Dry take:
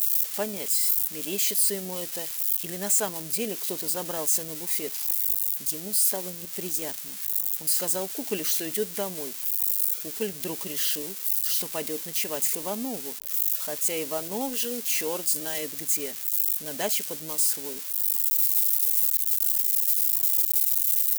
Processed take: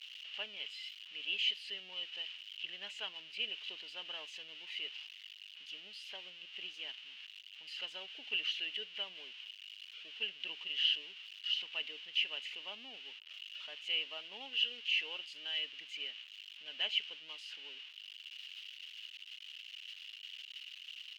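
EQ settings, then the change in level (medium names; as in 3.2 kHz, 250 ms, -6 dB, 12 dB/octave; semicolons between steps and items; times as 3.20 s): band-pass filter 2.9 kHz, Q 12; distance through air 250 m; +14.0 dB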